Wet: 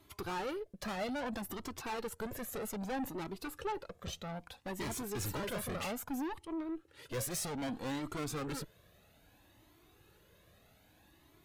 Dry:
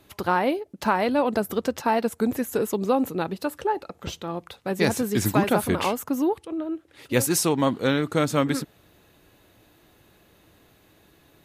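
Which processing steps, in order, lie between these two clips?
valve stage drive 29 dB, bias 0.4; Shepard-style flanger rising 0.62 Hz; trim -1.5 dB

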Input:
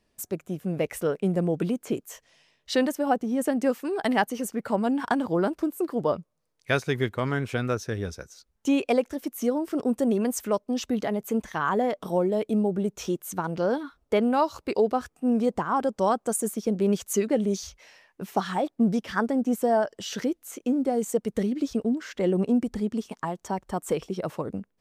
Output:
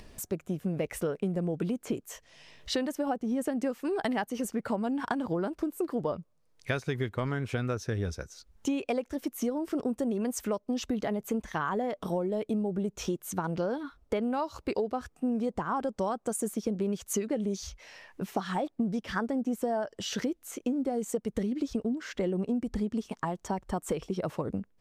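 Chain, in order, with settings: treble shelf 11 kHz -6 dB; upward compressor, threshold -40 dBFS; bass shelf 82 Hz +10 dB; compression, threshold -27 dBFS, peak gain reduction 10 dB

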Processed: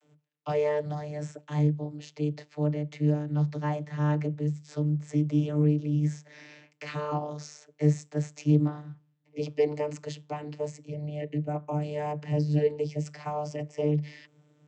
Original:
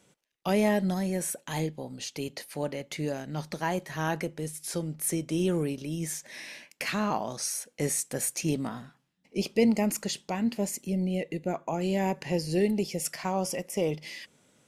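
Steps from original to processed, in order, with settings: vocoder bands 32, saw 149 Hz; trim +2.5 dB

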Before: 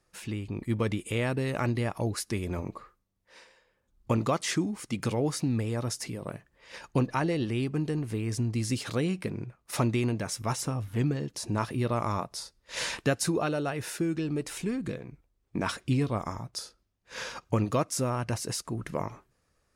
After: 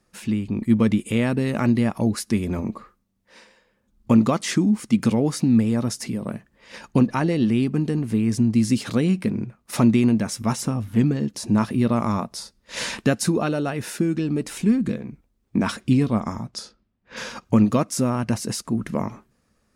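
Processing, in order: peaking EQ 220 Hz +12.5 dB 0.53 oct; 16.20–17.17 s: level-controlled noise filter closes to 2.4 kHz, open at -29.5 dBFS; trim +4 dB

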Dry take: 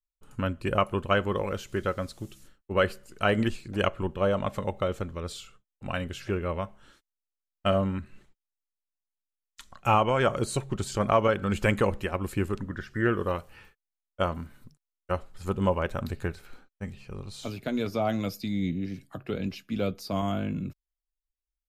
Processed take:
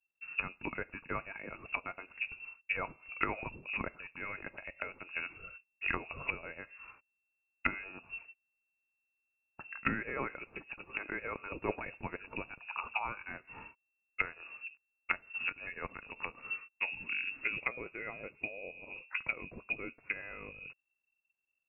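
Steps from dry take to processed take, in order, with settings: peak limiter -15 dBFS, peak gain reduction 4.5 dB; frequency inversion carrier 2.7 kHz; low-pass that closes with the level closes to 670 Hz, closed at -27 dBFS; trim +2 dB

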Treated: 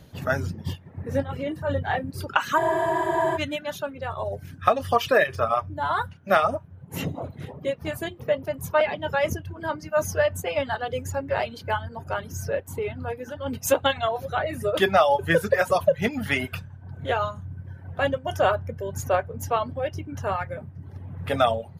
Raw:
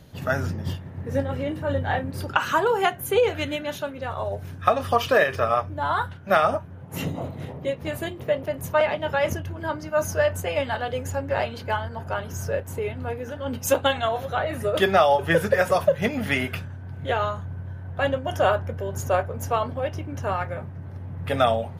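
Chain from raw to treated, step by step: reverb removal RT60 0.88 s; spectral freeze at 2.61 s, 0.75 s

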